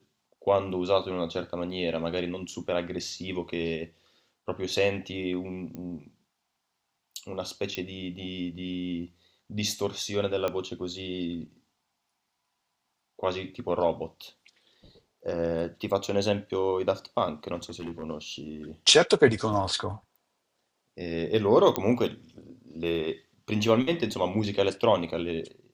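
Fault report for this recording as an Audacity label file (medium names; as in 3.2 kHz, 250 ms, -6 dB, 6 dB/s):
5.750000	5.750000	pop -26 dBFS
7.750000	7.750000	pop -17 dBFS
10.480000	10.480000	pop -16 dBFS
17.550000	18.040000	clipped -31 dBFS
19.530000	19.530000	dropout 4.9 ms
21.760000	21.760000	pop -10 dBFS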